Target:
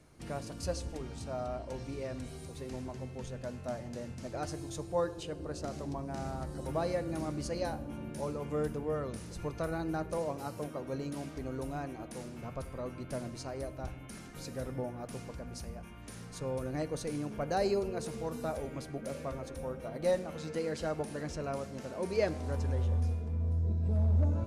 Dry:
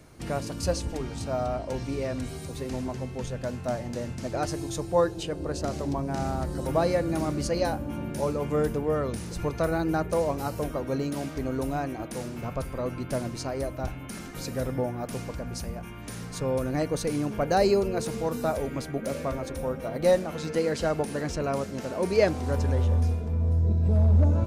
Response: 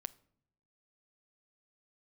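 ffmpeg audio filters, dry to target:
-filter_complex "[0:a]asettb=1/sr,asplit=3[s0][s1][s2];[s0]atrim=end=10.184[s3];[s1]atrim=start=10.18:end=10.86,asetpts=PTS-STARTPTS,afade=t=in:d=0.004:c=qsin,afade=t=out:st=0.676:d=0.004:c=qsin,highpass=f=100:w=0.5412,highpass=f=100:w=1.3066[s4];[s2]atrim=start=10.856[s5];[s3][s4]acrossfade=d=0.004:c1=hsin:c2=qsin[s6];[s6][s5]acrossfade=d=0.004:c1=qsin:c2=hsin[s7];[1:a]atrim=start_sample=2205,asetrate=22932,aresample=44100[s8];[s7][s8]afir=irnorm=-1:irlink=0,volume=0.355"

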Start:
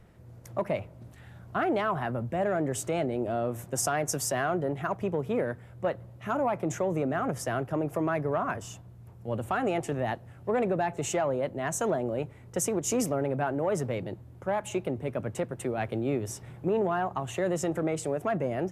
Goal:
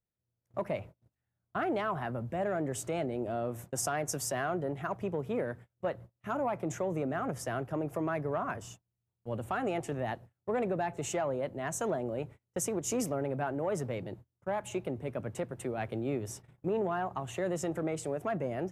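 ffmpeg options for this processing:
-af "agate=range=0.0224:threshold=0.00794:ratio=16:detection=peak,volume=0.596"

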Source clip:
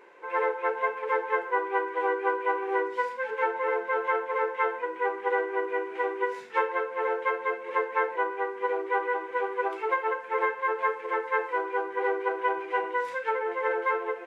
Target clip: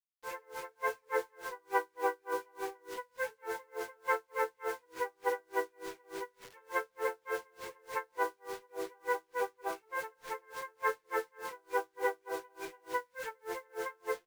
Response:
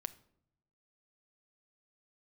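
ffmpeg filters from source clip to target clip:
-filter_complex "[0:a]asettb=1/sr,asplit=3[s0][s1][s2];[s0]atrim=end=5.404[s3];[s1]atrim=start=5.4:end=6.91,asetpts=PTS-STARTPTS,afade=t=in:d=0.004:c=qsin,afade=t=out:st=1.506:d=0.004:c=qsin,highpass=190[s4];[s2]atrim=start=6.906[s5];[s3][s4]acrossfade=d=0.004:c1=hsin:c2=qsin[s6];[s6][s5]acrossfade=d=0.004:c1=qsin:c2=hsin,acrusher=bits=6:mix=0:aa=0.000001[s7];[1:a]atrim=start_sample=2205[s8];[s7][s8]afir=irnorm=-1:irlink=0,aeval=exprs='val(0)*pow(10,-37*(0.5-0.5*cos(2*PI*3.4*n/s))/20)':c=same"

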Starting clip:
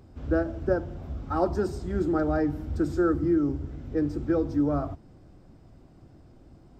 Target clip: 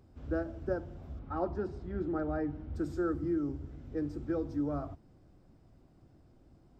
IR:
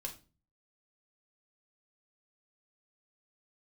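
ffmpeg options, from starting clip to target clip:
-filter_complex "[0:a]asettb=1/sr,asplit=3[s0][s1][s2];[s0]atrim=end=1.194[s3];[s1]atrim=start=1.19:end=2.75,asetpts=PTS-STARTPTS,afade=t=in:d=0.004:c=qsin,afade=t=out:st=1.556:d=0.004:c=qsin,lowpass=3000[s4];[s2]atrim=start=2.746[s5];[s3][s4]acrossfade=d=0.004:c1=hsin:c2=qsin[s6];[s6][s5]acrossfade=d=0.004:c1=qsin:c2=hsin,volume=0.376"

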